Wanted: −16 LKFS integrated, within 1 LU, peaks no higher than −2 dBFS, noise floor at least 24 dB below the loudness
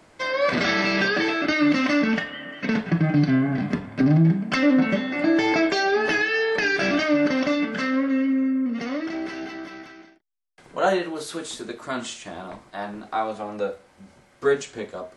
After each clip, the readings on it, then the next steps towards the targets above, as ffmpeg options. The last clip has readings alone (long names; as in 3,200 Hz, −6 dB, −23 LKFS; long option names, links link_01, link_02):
integrated loudness −22.5 LKFS; sample peak −9.0 dBFS; target loudness −16.0 LKFS
→ -af "volume=6.5dB"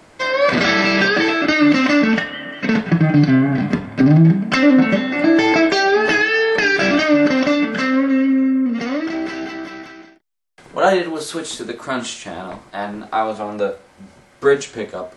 integrated loudness −16.0 LKFS; sample peak −2.5 dBFS; background noise floor −49 dBFS